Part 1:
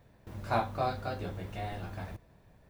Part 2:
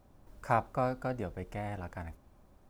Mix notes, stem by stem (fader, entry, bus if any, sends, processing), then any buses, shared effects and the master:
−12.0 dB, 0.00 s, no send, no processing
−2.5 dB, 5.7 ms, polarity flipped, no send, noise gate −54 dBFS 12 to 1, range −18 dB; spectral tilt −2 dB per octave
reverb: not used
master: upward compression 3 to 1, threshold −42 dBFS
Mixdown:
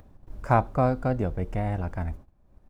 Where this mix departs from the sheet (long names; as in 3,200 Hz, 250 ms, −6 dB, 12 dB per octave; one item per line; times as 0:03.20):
stem 1 −12.0 dB → −21.5 dB
stem 2 −2.5 dB → +6.0 dB